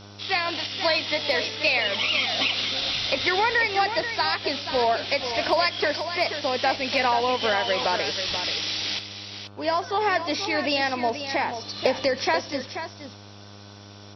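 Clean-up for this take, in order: de-hum 101.3 Hz, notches 15; inverse comb 483 ms -9.5 dB

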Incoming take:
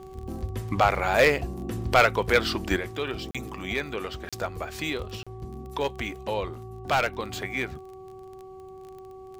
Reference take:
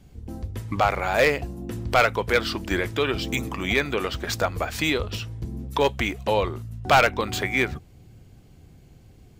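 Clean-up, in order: de-click; de-hum 378.4 Hz, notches 3; interpolate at 3.31/4.29/5.23 s, 36 ms; trim 0 dB, from 2.76 s +7 dB

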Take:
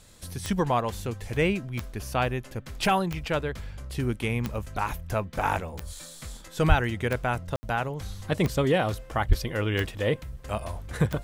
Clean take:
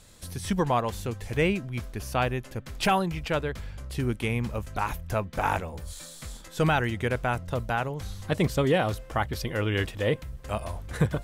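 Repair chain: de-click; de-plosive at 6.68/9.28 s; room tone fill 7.56–7.63 s

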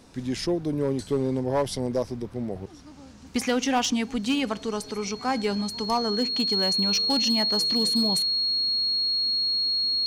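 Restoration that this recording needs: clip repair -17 dBFS; band-stop 4.3 kHz, Q 30

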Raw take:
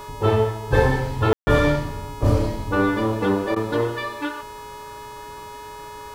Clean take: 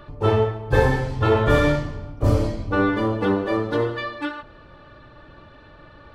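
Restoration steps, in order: de-hum 421.8 Hz, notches 39; band-stop 960 Hz, Q 30; room tone fill 1.33–1.47 s; interpolate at 1.34/3.55 s, 10 ms

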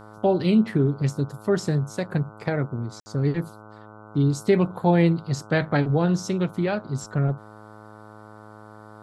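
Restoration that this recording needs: de-hum 106.9 Hz, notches 14; room tone fill 3.00–3.06 s

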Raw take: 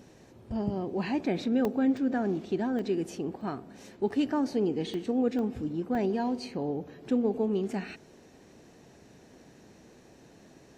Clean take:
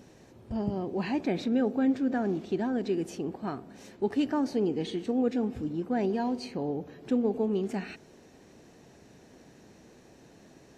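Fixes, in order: interpolate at 1.65/1.97/2.79/3.41/4.09/4.94/5.39/5.95 s, 1.1 ms

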